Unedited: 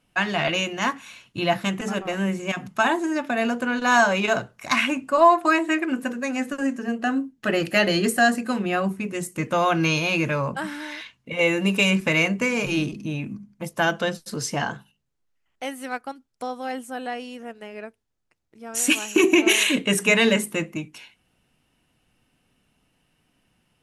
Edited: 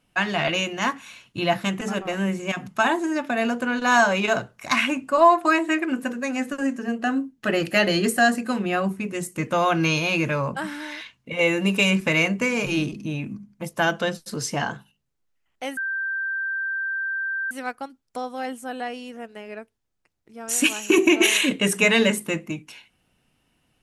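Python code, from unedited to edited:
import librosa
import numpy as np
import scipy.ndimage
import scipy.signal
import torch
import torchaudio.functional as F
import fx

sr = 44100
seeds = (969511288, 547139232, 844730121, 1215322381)

y = fx.edit(x, sr, fx.insert_tone(at_s=15.77, length_s=1.74, hz=1570.0, db=-24.0), tone=tone)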